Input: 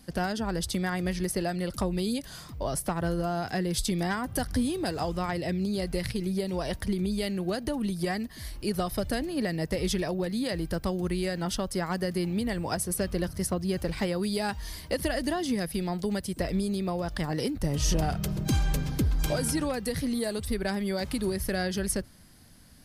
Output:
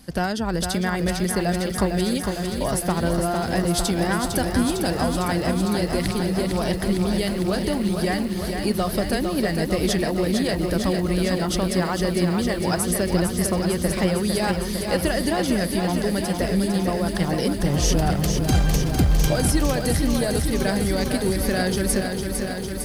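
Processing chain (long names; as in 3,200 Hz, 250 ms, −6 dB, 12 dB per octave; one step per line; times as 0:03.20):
feedback echo at a low word length 454 ms, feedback 80%, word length 9 bits, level −6 dB
level +5.5 dB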